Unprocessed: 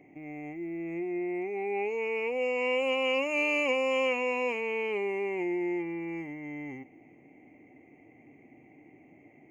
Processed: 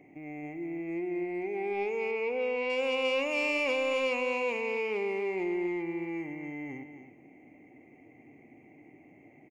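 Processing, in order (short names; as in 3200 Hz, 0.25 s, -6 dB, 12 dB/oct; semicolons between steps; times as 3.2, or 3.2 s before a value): soft clip -22.5 dBFS, distortion -19 dB; 2.11–2.7 Gaussian blur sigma 1.8 samples; on a send: echo 0.266 s -10 dB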